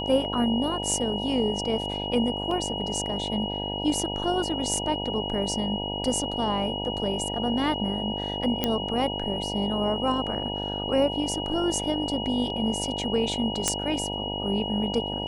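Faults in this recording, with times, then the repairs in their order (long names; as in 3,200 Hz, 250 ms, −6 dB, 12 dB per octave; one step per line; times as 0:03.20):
mains buzz 50 Hz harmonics 19 −33 dBFS
whistle 2,900 Hz −32 dBFS
0:02.51: drop-out 3.2 ms
0:08.64: click −9 dBFS
0:13.68: click −7 dBFS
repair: click removal
hum removal 50 Hz, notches 19
notch filter 2,900 Hz, Q 30
repair the gap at 0:02.51, 3.2 ms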